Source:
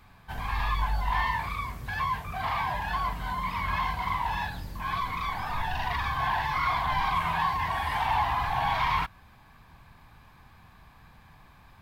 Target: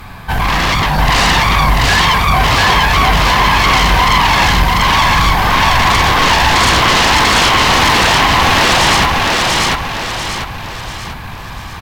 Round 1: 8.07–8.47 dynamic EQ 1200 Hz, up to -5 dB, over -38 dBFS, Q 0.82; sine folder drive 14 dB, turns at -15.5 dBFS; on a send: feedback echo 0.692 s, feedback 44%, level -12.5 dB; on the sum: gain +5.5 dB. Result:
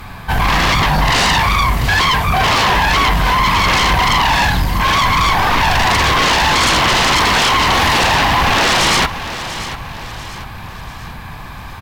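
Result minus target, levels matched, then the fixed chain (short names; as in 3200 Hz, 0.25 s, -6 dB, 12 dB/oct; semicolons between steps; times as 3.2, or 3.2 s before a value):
echo-to-direct -11.5 dB
8.07–8.47 dynamic EQ 1200 Hz, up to -5 dB, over -38 dBFS, Q 0.82; sine folder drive 14 dB, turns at -15.5 dBFS; on a send: feedback echo 0.692 s, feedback 44%, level -1 dB; on the sum: gain +5.5 dB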